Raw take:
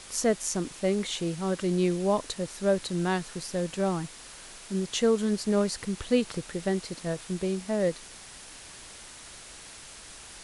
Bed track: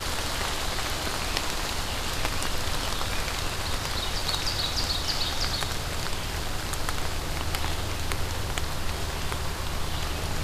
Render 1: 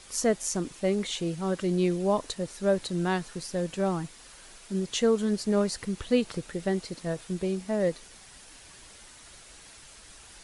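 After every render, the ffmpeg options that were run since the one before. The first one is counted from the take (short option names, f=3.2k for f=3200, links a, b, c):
-af "afftdn=nr=6:nf=-47"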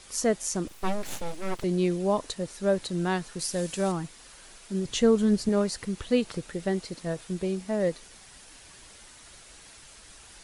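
-filter_complex "[0:a]asettb=1/sr,asplit=3[a][b][c];[a]atrim=end=0.674[d];[b]atrim=start=0.67:end=1.64,asetpts=PTS-STARTPTS,afade=t=in:d=0.004:c=qsin,afade=t=out:st=0.966:d=0.004:c=qsin,aeval=exprs='abs(val(0))':c=same[e];[c]atrim=start=1.636[f];[d][e]acrossfade=d=0.004:c1=hsin:c2=qsin[g];[g][f]acrossfade=d=0.004:c1=qsin:c2=hsin,asettb=1/sr,asplit=3[h][i][j];[h]atrim=end=3.394[k];[i]atrim=start=3.39:end=3.92,asetpts=PTS-STARTPTS,afade=t=in:d=0.004:c=qsin,afade=t=out:st=0.526:d=0.004:c=qsin,highshelf=f=4.1k:g=11[l];[j]atrim=start=3.916[m];[k][l]acrossfade=d=0.004:c1=hsin:c2=qsin[n];[n][m]acrossfade=d=0.004:c1=qsin:c2=hsin,asettb=1/sr,asplit=3[o][p][q];[o]atrim=end=4.854[r];[p]atrim=start=4.85:end=5.49,asetpts=PTS-STARTPTS,afade=t=in:d=0.004:c=qsin,afade=t=out:st=0.636:d=0.004:c=qsin,lowshelf=f=200:g=10.5[s];[q]atrim=start=5.486[t];[r][s]acrossfade=d=0.004:c1=hsin:c2=qsin[u];[u][t]acrossfade=d=0.004:c1=qsin:c2=hsin"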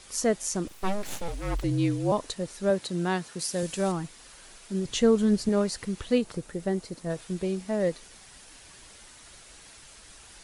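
-filter_complex "[0:a]asettb=1/sr,asplit=3[a][b][c];[a]atrim=end=1.284[d];[b]atrim=start=1.28:end=2.12,asetpts=PTS-STARTPTS,afade=t=in:d=0.004:c=qsin,afade=t=out:st=0.836:d=0.004:c=qsin,afreqshift=-46[e];[c]atrim=start=2.116[f];[d][e]acrossfade=d=0.004:c1=hsin:c2=qsin[g];[g][f]acrossfade=d=0.004:c1=qsin:c2=hsin,asettb=1/sr,asplit=3[h][i][j];[h]atrim=end=2.704[k];[i]atrim=start=2.7:end=3.63,asetpts=PTS-STARTPTS,afade=t=in:d=0.004:c=qsin,afade=t=out:st=0.926:d=0.004:c=qsin,highpass=100[l];[j]atrim=start=3.626[m];[k][l]acrossfade=d=0.004:c1=hsin:c2=qsin[n];[n][m]acrossfade=d=0.004:c1=qsin:c2=hsin,asettb=1/sr,asplit=3[o][p][q];[o]atrim=end=6.184[r];[p]atrim=start=6.18:end=7.1,asetpts=PTS-STARTPTS,afade=t=in:d=0.004:c=qsin,afade=t=out:st=0.916:d=0.004:c=qsin,equalizer=f=3.1k:w=0.59:g=-6[s];[q]atrim=start=7.096[t];[r][s]acrossfade=d=0.004:c1=hsin:c2=qsin[u];[u][t]acrossfade=d=0.004:c1=qsin:c2=hsin"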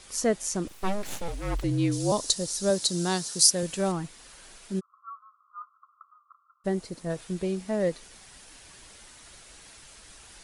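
-filter_complex "[0:a]asplit=3[a][b][c];[a]afade=t=out:st=1.91:d=0.02[d];[b]highshelf=f=3.5k:t=q:w=1.5:g=12.5,afade=t=in:st=1.91:d=0.02,afade=t=out:st=3.49:d=0.02[e];[c]afade=t=in:st=3.49:d=0.02[f];[d][e][f]amix=inputs=3:normalize=0,asplit=3[g][h][i];[g]afade=t=out:st=4.79:d=0.02[j];[h]asuperpass=centerf=1200:order=12:qfactor=3.8,afade=t=in:st=4.79:d=0.02,afade=t=out:st=6.64:d=0.02[k];[i]afade=t=in:st=6.64:d=0.02[l];[j][k][l]amix=inputs=3:normalize=0"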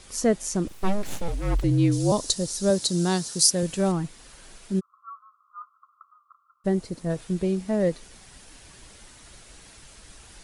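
-af "lowshelf=f=380:g=7"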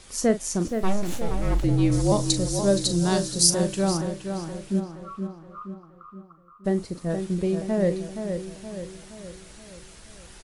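-filter_complex "[0:a]asplit=2[a][b];[b]adelay=40,volume=-12dB[c];[a][c]amix=inputs=2:normalize=0,asplit=2[d][e];[e]adelay=472,lowpass=f=2.8k:p=1,volume=-7dB,asplit=2[f][g];[g]adelay=472,lowpass=f=2.8k:p=1,volume=0.51,asplit=2[h][i];[i]adelay=472,lowpass=f=2.8k:p=1,volume=0.51,asplit=2[j][k];[k]adelay=472,lowpass=f=2.8k:p=1,volume=0.51,asplit=2[l][m];[m]adelay=472,lowpass=f=2.8k:p=1,volume=0.51,asplit=2[n][o];[o]adelay=472,lowpass=f=2.8k:p=1,volume=0.51[p];[d][f][h][j][l][n][p]amix=inputs=7:normalize=0"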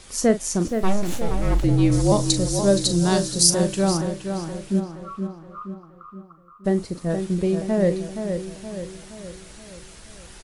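-af "volume=3dB,alimiter=limit=-3dB:level=0:latency=1"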